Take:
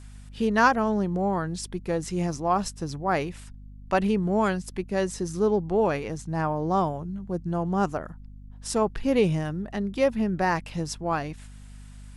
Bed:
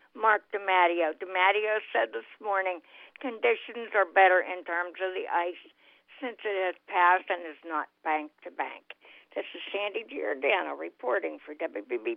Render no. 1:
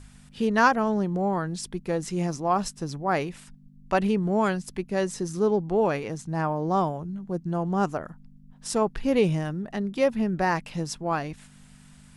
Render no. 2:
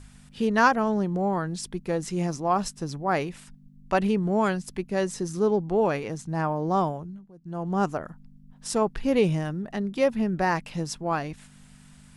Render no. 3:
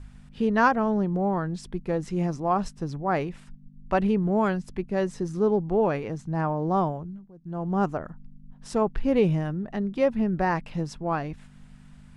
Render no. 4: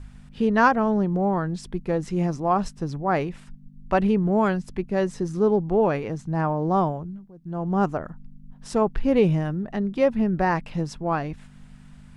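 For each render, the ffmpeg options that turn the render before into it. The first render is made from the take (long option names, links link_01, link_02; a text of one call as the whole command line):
ffmpeg -i in.wav -af "bandreject=frequency=50:width_type=h:width=4,bandreject=frequency=100:width_type=h:width=4" out.wav
ffmpeg -i in.wav -filter_complex "[0:a]asplit=3[link_01][link_02][link_03];[link_01]atrim=end=7.32,asetpts=PTS-STARTPTS,afade=type=out:start_time=6.91:duration=0.41:silence=0.0891251[link_04];[link_02]atrim=start=7.32:end=7.36,asetpts=PTS-STARTPTS,volume=-21dB[link_05];[link_03]atrim=start=7.36,asetpts=PTS-STARTPTS,afade=type=in:duration=0.41:silence=0.0891251[link_06];[link_04][link_05][link_06]concat=n=3:v=0:a=1" out.wav
ffmpeg -i in.wav -af "lowpass=frequency=2100:poles=1,lowshelf=frequency=83:gain=7" out.wav
ffmpeg -i in.wav -af "volume=2.5dB" out.wav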